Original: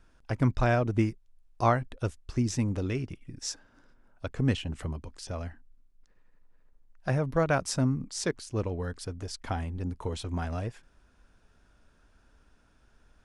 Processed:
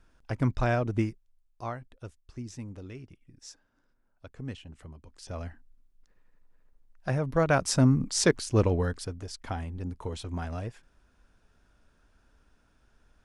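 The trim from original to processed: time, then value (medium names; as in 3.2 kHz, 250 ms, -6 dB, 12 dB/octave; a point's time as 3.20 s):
0.99 s -1.5 dB
1.63 s -12 dB
4.96 s -12 dB
5.37 s -1 dB
7.18 s -1 dB
8.09 s +7.5 dB
8.75 s +7.5 dB
9.22 s -2 dB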